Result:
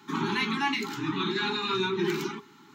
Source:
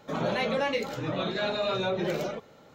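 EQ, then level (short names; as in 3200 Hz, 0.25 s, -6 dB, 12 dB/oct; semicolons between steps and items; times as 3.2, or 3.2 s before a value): Chebyshev high-pass 220 Hz, order 2; Chebyshev band-stop 410–840 Hz, order 5; +5.0 dB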